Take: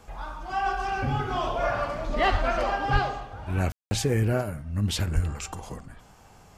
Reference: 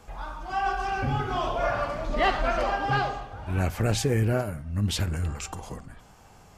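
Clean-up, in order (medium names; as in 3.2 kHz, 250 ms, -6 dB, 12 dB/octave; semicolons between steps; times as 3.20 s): 2.31–2.43 s: high-pass 140 Hz 24 dB/octave; 2.92–3.04 s: high-pass 140 Hz 24 dB/octave; 5.14–5.26 s: high-pass 140 Hz 24 dB/octave; room tone fill 3.72–3.91 s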